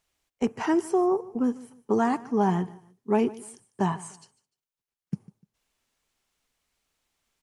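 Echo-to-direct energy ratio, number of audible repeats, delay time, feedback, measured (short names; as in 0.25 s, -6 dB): -19.5 dB, 2, 0.149 s, 30%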